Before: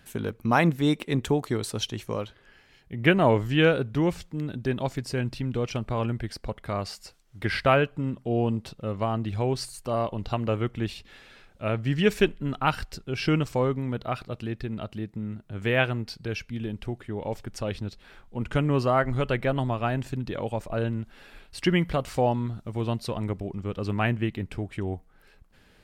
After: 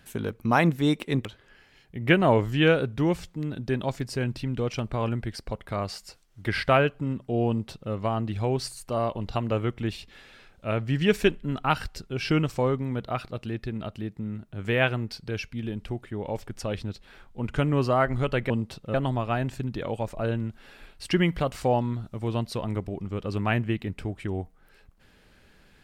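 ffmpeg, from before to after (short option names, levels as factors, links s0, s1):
-filter_complex "[0:a]asplit=4[s0][s1][s2][s3];[s0]atrim=end=1.252[s4];[s1]atrim=start=2.218:end=19.472[s5];[s2]atrim=start=8.448:end=8.892[s6];[s3]atrim=start=19.468[s7];[s4][s5]acrossfade=d=0.004:c1=hsin:c2=hsin[s8];[s8][s6]acrossfade=d=0.004:c1=hsin:c2=hsin[s9];[s9][s7]acrossfade=d=0.004:c1=hsin:c2=hsin"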